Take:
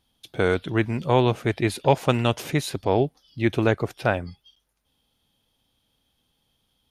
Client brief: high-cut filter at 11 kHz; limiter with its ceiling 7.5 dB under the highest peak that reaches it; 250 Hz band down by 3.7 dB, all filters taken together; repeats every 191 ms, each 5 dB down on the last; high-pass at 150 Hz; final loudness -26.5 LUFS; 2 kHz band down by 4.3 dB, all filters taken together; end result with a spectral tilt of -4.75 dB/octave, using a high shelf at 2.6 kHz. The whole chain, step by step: high-pass 150 Hz; low-pass 11 kHz; peaking EQ 250 Hz -4.5 dB; peaking EQ 2 kHz -9 dB; treble shelf 2.6 kHz +6.5 dB; peak limiter -11.5 dBFS; feedback delay 191 ms, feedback 56%, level -5 dB; trim -0.5 dB

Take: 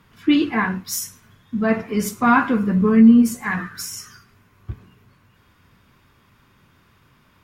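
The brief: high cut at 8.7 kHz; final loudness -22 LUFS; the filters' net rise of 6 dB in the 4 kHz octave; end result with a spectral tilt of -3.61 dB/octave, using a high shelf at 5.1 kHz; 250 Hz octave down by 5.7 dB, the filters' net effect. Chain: low-pass 8.7 kHz; peaking EQ 250 Hz -6.5 dB; peaking EQ 4 kHz +8 dB; treble shelf 5.1 kHz +3 dB; trim -0.5 dB

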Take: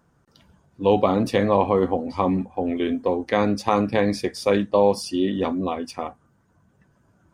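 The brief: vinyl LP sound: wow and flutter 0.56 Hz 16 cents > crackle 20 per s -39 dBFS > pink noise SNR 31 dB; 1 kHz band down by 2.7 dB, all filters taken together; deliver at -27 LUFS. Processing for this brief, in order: peaking EQ 1 kHz -3.5 dB; wow and flutter 0.56 Hz 16 cents; crackle 20 per s -39 dBFS; pink noise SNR 31 dB; trim -4 dB

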